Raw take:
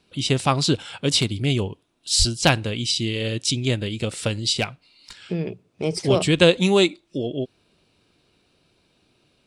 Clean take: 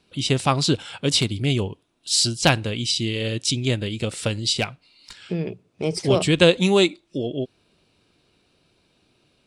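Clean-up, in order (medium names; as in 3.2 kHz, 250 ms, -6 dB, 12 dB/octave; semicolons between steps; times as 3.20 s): 2.18–2.30 s: high-pass 140 Hz 24 dB/octave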